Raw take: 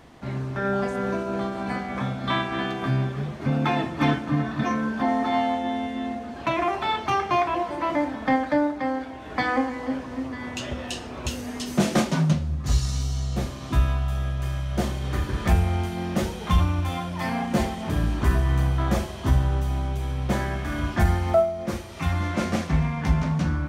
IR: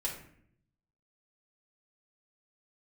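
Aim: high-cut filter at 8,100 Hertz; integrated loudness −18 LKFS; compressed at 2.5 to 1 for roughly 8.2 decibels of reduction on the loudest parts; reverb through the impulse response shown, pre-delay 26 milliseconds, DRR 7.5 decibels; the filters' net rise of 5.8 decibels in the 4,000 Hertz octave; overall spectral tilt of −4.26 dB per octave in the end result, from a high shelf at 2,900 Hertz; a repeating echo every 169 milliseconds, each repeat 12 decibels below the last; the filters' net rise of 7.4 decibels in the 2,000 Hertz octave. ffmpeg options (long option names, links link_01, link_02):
-filter_complex "[0:a]lowpass=8100,equalizer=frequency=2000:width_type=o:gain=9,highshelf=frequency=2900:gain=-5,equalizer=frequency=4000:width_type=o:gain=8,acompressor=threshold=-27dB:ratio=2.5,aecho=1:1:169|338|507:0.251|0.0628|0.0157,asplit=2[link_01][link_02];[1:a]atrim=start_sample=2205,adelay=26[link_03];[link_02][link_03]afir=irnorm=-1:irlink=0,volume=-10dB[link_04];[link_01][link_04]amix=inputs=2:normalize=0,volume=10.5dB"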